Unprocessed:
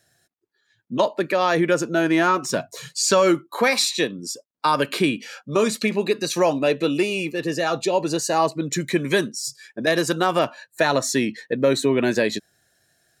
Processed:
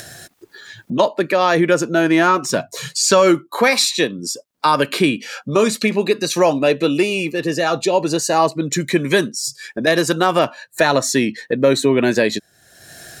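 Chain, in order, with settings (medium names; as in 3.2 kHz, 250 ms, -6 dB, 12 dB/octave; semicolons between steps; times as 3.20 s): upward compressor, threshold -24 dBFS; trim +4.5 dB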